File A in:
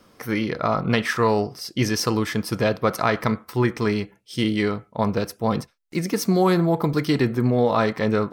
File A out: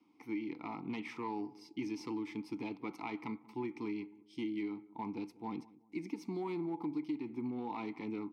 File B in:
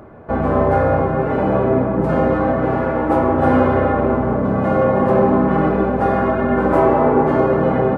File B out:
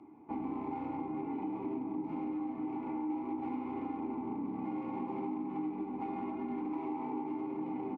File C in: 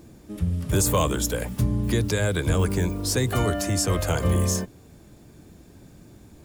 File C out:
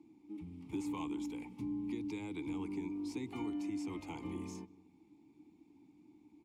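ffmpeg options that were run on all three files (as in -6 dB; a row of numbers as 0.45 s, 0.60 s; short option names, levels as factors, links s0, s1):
-filter_complex "[0:a]acrossover=split=460|3600[s0][s1][s2];[s2]acontrast=81[s3];[s0][s1][s3]amix=inputs=3:normalize=0,aeval=exprs='clip(val(0),-1,0.211)':c=same,asplit=3[s4][s5][s6];[s4]bandpass=f=300:t=q:w=8,volume=1[s7];[s5]bandpass=f=870:t=q:w=8,volume=0.501[s8];[s6]bandpass=f=2240:t=q:w=8,volume=0.355[s9];[s7][s8][s9]amix=inputs=3:normalize=0,acompressor=threshold=0.0282:ratio=6,asplit=2[s10][s11];[s11]adelay=188,lowpass=f=900:p=1,volume=0.106,asplit=2[s12][s13];[s13]adelay=188,lowpass=f=900:p=1,volume=0.42,asplit=2[s14][s15];[s15]adelay=188,lowpass=f=900:p=1,volume=0.42[s16];[s10][s12][s14][s16]amix=inputs=4:normalize=0,volume=0.668"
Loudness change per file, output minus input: -18.5 LU, -21.5 LU, -17.5 LU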